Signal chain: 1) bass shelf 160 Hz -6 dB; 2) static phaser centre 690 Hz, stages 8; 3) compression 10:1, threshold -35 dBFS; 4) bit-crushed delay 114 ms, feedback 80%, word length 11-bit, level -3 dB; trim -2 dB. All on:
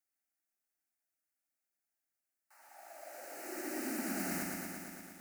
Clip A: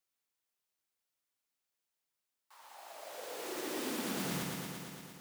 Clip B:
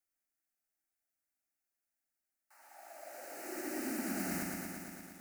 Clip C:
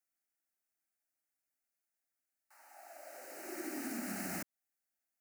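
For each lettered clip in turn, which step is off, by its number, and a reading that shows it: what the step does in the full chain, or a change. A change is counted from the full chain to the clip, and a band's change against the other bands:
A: 2, crest factor change -2.0 dB; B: 1, 125 Hz band +2.5 dB; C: 4, momentary loudness spread change -1 LU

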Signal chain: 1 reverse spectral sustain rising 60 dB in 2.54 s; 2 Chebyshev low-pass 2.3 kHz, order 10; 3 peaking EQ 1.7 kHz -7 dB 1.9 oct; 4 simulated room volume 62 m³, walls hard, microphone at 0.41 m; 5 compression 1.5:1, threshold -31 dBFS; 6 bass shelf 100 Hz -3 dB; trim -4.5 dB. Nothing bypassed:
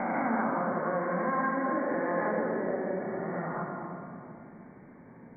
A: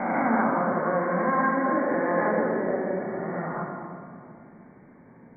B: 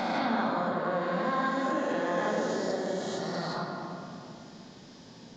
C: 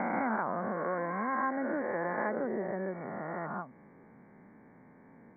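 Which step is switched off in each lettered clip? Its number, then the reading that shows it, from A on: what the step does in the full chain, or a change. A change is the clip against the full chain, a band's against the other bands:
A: 5, mean gain reduction 3.5 dB; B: 2, momentary loudness spread change +3 LU; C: 4, momentary loudness spread change -9 LU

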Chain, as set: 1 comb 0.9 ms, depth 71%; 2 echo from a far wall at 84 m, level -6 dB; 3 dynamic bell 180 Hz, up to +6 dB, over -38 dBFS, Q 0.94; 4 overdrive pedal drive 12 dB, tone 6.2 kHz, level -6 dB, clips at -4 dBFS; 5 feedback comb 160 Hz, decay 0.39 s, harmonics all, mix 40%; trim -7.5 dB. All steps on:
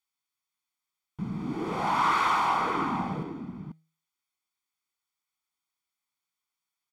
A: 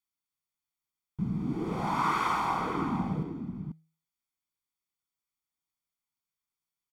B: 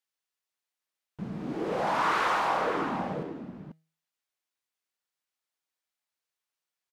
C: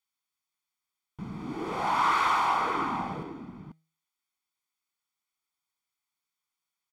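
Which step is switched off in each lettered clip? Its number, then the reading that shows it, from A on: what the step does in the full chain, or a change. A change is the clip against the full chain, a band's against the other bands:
4, crest factor change +2.5 dB; 1, 500 Hz band +7.0 dB; 3, 125 Hz band -5.0 dB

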